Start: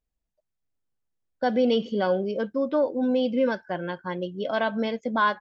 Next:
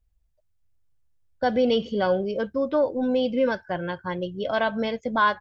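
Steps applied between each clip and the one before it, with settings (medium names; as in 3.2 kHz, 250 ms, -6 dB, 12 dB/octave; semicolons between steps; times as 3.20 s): resonant low shelf 140 Hz +12.5 dB, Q 1.5; trim +2 dB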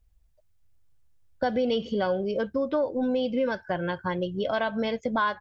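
compression 2.5:1, threshold -32 dBFS, peak gain reduction 11 dB; trim +5 dB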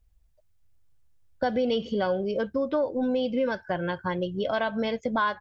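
no audible change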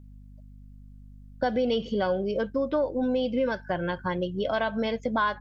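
hum 50 Hz, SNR 19 dB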